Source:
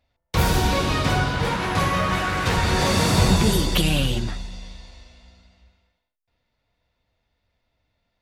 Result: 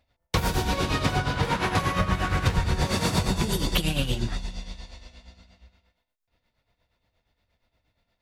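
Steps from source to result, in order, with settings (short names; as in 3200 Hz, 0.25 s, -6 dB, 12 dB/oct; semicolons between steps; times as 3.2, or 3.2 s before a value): 1.99–2.87 low shelf 150 Hz +11 dB; compressor 6:1, threshold -22 dBFS, peak gain reduction 11 dB; tremolo 8.5 Hz, depth 67%; gain +3.5 dB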